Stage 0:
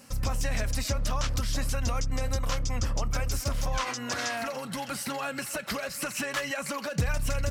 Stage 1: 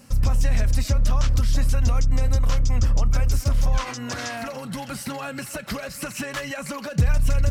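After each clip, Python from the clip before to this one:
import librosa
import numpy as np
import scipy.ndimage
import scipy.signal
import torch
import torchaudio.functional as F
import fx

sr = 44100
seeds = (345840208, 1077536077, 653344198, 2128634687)

y = fx.low_shelf(x, sr, hz=210.0, db=11.0)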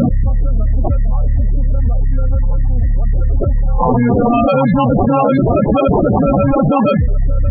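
y = fx.sample_hold(x, sr, seeds[0], rate_hz=1900.0, jitter_pct=0)
y = fx.spec_topn(y, sr, count=16)
y = fx.env_flatten(y, sr, amount_pct=100)
y = F.gain(torch.from_numpy(y), 2.5).numpy()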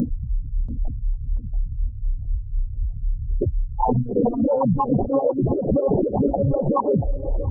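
y = fx.envelope_sharpen(x, sr, power=3.0)
y = fx.echo_banded(y, sr, ms=685, feedback_pct=54, hz=580.0, wet_db=-11.0)
y = fx.stagger_phaser(y, sr, hz=4.0)
y = F.gain(torch.from_numpy(y), -5.0).numpy()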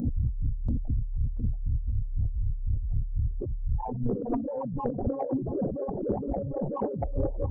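y = fx.over_compress(x, sr, threshold_db=-29.0, ratio=-1.0)
y = 10.0 ** (-15.5 / 20.0) * np.tanh(y / 10.0 ** (-15.5 / 20.0))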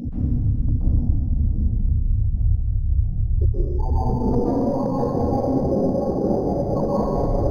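y = fx.rev_plate(x, sr, seeds[1], rt60_s=2.4, hf_ratio=1.0, predelay_ms=115, drr_db=-9.5)
y = np.interp(np.arange(len(y)), np.arange(len(y))[::8], y[::8])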